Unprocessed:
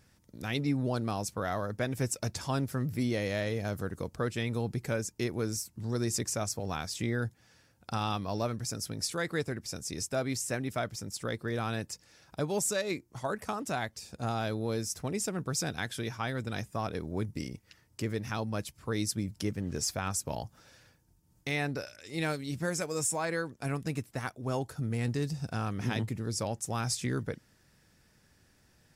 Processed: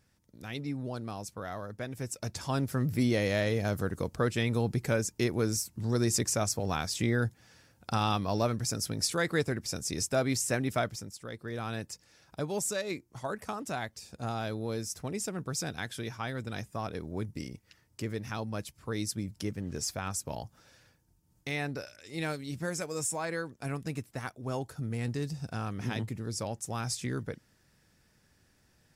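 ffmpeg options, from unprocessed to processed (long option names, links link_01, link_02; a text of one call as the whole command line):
ffmpeg -i in.wav -af "volume=10.5dB,afade=type=in:start_time=2.05:duration=0.9:silence=0.334965,afade=type=out:start_time=10.79:duration=0.39:silence=0.237137,afade=type=in:start_time=11.18:duration=0.59:silence=0.446684" out.wav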